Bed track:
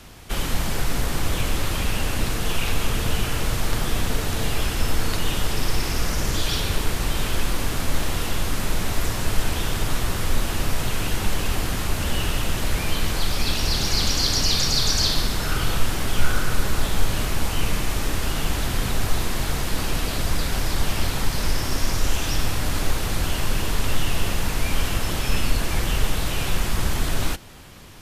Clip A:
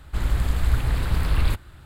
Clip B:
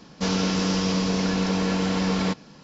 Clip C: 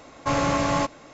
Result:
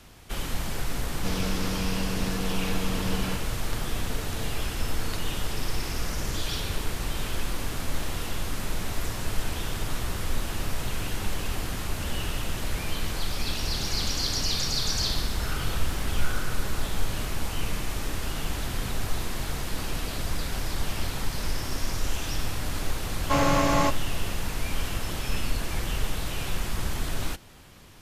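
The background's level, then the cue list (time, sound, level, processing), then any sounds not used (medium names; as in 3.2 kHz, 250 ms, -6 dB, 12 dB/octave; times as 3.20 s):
bed track -6.5 dB
1.03 s: add B -8.5 dB
9.80 s: add A -15.5 dB + compression, threshold -22 dBFS
14.70 s: add A -12.5 dB
23.04 s: add C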